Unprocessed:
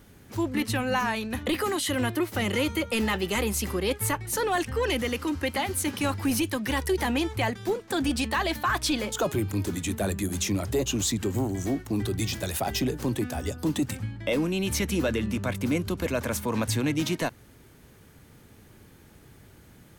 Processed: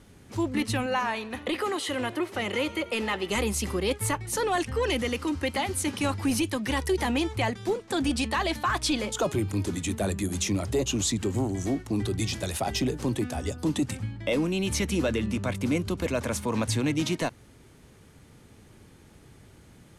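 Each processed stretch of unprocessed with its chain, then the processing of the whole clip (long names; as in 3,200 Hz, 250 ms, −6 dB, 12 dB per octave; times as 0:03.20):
0:00.86–0:03.30: bass and treble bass −10 dB, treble −6 dB + echo with shifted repeats 88 ms, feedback 55%, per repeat +37 Hz, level −21 dB
whole clip: low-pass filter 11,000 Hz 24 dB per octave; parametric band 1,600 Hz −3 dB 0.35 octaves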